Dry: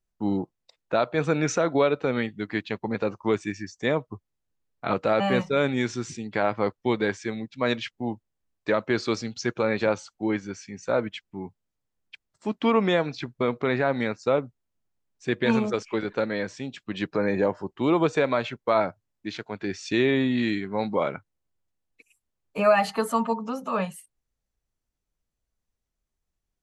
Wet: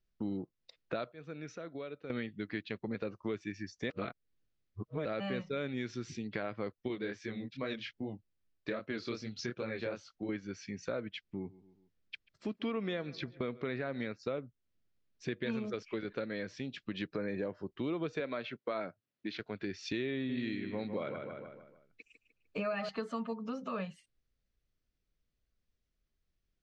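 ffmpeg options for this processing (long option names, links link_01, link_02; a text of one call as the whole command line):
ffmpeg -i in.wav -filter_complex "[0:a]asettb=1/sr,asplit=3[link_01][link_02][link_03];[link_01]atrim=end=6.884[link_04];[link_02]atrim=start=6.88:end=10.29,asetpts=PTS-STARTPTS,afade=type=in:duration=0.004:curve=qsin,afade=type=out:start_time=3.406:duration=0.004:curve=qsin,flanger=delay=19:depth=6.7:speed=2.5[link_05];[link_03]atrim=start=10.286[link_06];[link_04][link_05]acrossfade=duration=0.004:curve1=hsin:curve2=qsin[link_07];[link_07][link_06]acrossfade=duration=0.004:curve1=qsin:curve2=hsin,asettb=1/sr,asplit=3[link_08][link_09][link_10];[link_08]atrim=end=11.294[link_11];[link_09]atrim=start=11.29:end=14.07,asetpts=PTS-STARTPTS,afade=type=in:duration=0.004:curve=qsin,afade=type=out:start_time=2.776:duration=0.004:curve=qsin,asplit=2[link_12][link_13];[link_13]adelay=137,lowpass=frequency=3900:poles=1,volume=-23.5dB,asplit=2[link_14][link_15];[link_15]adelay=137,lowpass=frequency=3900:poles=1,volume=0.51,asplit=2[link_16][link_17];[link_17]adelay=137,lowpass=frequency=3900:poles=1,volume=0.51[link_18];[link_12][link_14][link_16][link_18]amix=inputs=4:normalize=0,atrim=end_sample=122598[link_19];[link_10]atrim=start=14.066[link_20];[link_11][link_19]acrossfade=duration=0.004:curve1=hsin:curve2=qsin[link_21];[link_21][link_20]acrossfade=duration=0.004:curve1=qsin:curve2=hsin,asettb=1/sr,asplit=3[link_22][link_23][link_24];[link_22]atrim=end=18.204[link_25];[link_23]atrim=start=18.2:end=19.4,asetpts=PTS-STARTPTS,afade=type=in:duration=0.004:curve=qsin,afade=type=out:start_time=1.196:duration=0.004:curve=qsin,highpass=170,lowpass=5400[link_26];[link_24]atrim=start=19.396[link_27];[link_25][link_26]acrossfade=duration=0.004:curve1=hsin:curve2=qsin[link_28];[link_28][link_27]acrossfade=duration=0.004:curve1=qsin:curve2=hsin,asettb=1/sr,asplit=3[link_29][link_30][link_31];[link_29]atrim=end=20.144[link_32];[link_30]atrim=start=20.14:end=22.89,asetpts=PTS-STARTPTS,afade=type=in:duration=0.004:curve=qsin,afade=type=out:start_time=2.746:duration=0.004:curve=qsin,asplit=2[link_33][link_34];[link_34]adelay=151,lowpass=frequency=3600:poles=1,volume=-8.5dB,asplit=2[link_35][link_36];[link_36]adelay=151,lowpass=frequency=3600:poles=1,volume=0.42,asplit=2[link_37][link_38];[link_38]adelay=151,lowpass=frequency=3600:poles=1,volume=0.42,asplit=2[link_39][link_40];[link_40]adelay=151,lowpass=frequency=3600:poles=1,volume=0.42,asplit=2[link_41][link_42];[link_42]adelay=151,lowpass=frequency=3600:poles=1,volume=0.42[link_43];[link_33][link_35][link_37][link_39][link_41][link_43]amix=inputs=6:normalize=0,atrim=end_sample=121275[link_44];[link_31]atrim=start=22.886[link_45];[link_32][link_44]acrossfade=duration=0.004:curve1=hsin:curve2=qsin[link_46];[link_46][link_45]acrossfade=duration=0.004:curve1=qsin:curve2=hsin,asplit=5[link_47][link_48][link_49][link_50][link_51];[link_47]atrim=end=1.12,asetpts=PTS-STARTPTS,afade=type=out:start_time=0.99:duration=0.13:curve=log:silence=0.105925[link_52];[link_48]atrim=start=1.12:end=2.1,asetpts=PTS-STARTPTS,volume=-19.5dB[link_53];[link_49]atrim=start=2.1:end=3.902,asetpts=PTS-STARTPTS,afade=type=in:duration=0.13:curve=log:silence=0.105925[link_54];[link_50]atrim=start=3.898:end=5.052,asetpts=PTS-STARTPTS,areverse[link_55];[link_51]atrim=start=5.048[link_56];[link_52][link_53][link_54]concat=n=3:v=0:a=1[link_57];[link_57][link_55]acrossfade=duration=0.004:curve1=hsin:curve2=hsin[link_58];[link_58][link_56]acrossfade=duration=0.004:curve1=hsin:curve2=hsin,lowpass=frequency=5300:width=0.5412,lowpass=frequency=5300:width=1.3066,equalizer=frequency=880:width=2.2:gain=-11,acompressor=threshold=-39dB:ratio=3,volume=1dB" out.wav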